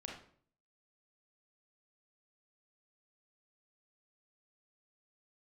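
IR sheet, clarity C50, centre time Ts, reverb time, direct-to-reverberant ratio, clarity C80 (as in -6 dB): 3.5 dB, 37 ms, 0.55 s, -1.0 dB, 8.5 dB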